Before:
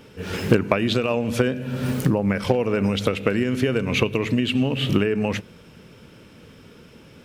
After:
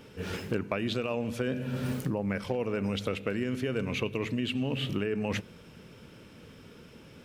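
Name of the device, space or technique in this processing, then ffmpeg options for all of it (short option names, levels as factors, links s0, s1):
compression on the reversed sound: -af "areverse,acompressor=threshold=0.0708:ratio=6,areverse,volume=0.631"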